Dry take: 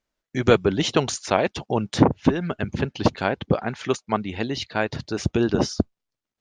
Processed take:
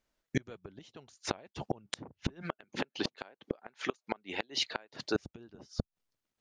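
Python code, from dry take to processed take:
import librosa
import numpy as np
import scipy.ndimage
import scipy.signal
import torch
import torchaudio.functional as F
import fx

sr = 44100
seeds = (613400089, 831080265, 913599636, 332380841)

y = fx.highpass(x, sr, hz=360.0, slope=12, at=(2.41, 5.14), fade=0.02)
y = fx.gate_flip(y, sr, shuts_db=-16.0, range_db=-32)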